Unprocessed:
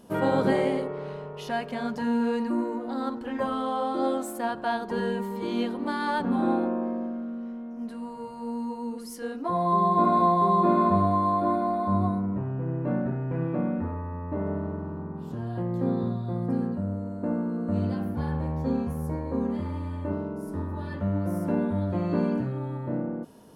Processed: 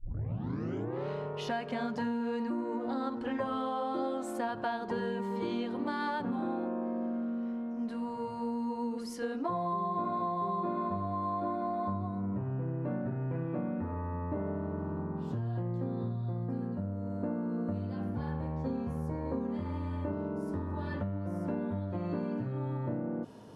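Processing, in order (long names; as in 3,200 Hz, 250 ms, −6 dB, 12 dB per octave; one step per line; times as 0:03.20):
turntable start at the beginning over 1.08 s
Bessel low-pass filter 5,700 Hz, order 2
parametric band 110 Hz +14 dB 0.21 octaves
downward compressor 12 to 1, threshold −31 dBFS, peak gain reduction 16.5 dB
low-shelf EQ 85 Hz −7 dB
level +1.5 dB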